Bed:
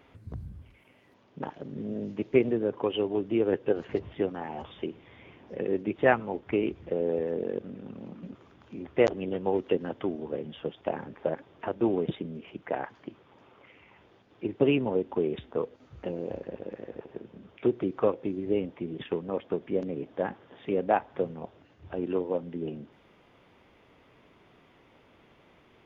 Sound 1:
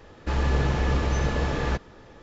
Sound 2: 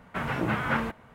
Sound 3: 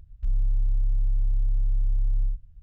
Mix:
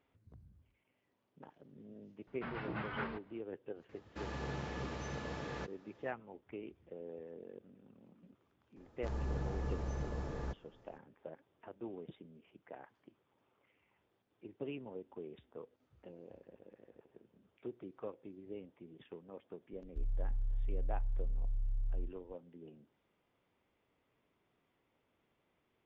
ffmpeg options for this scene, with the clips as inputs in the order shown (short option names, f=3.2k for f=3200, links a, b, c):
-filter_complex "[1:a]asplit=2[a][b];[0:a]volume=-19.5dB[c];[2:a]aresample=11025,aresample=44100[d];[a]highpass=110[e];[b]equalizer=f=2.9k:w=0.65:g=-10[f];[d]atrim=end=1.14,asetpts=PTS-STARTPTS,volume=-13.5dB,afade=t=in:d=0.004:c=hsin,afade=t=out:st=1.136:d=0.004:c=hsin,adelay=2270[g];[e]atrim=end=2.22,asetpts=PTS-STARTPTS,volume=-14.5dB,afade=t=in:d=0.004:c=hsin,afade=t=out:st=2.216:d=0.004:c=hsin,adelay=171549S[h];[f]atrim=end=2.22,asetpts=PTS-STARTPTS,volume=-14.5dB,afade=t=in:d=0.004:c=hsin,afade=t=out:st=2.216:d=0.004:c=hsin,adelay=8760[i];[3:a]atrim=end=2.62,asetpts=PTS-STARTPTS,volume=-12.5dB,afade=t=in:d=0.004:c=hsin,afade=t=out:st=2.616:d=0.004:c=hsin,adelay=19730[j];[c][g][h][i][j]amix=inputs=5:normalize=0"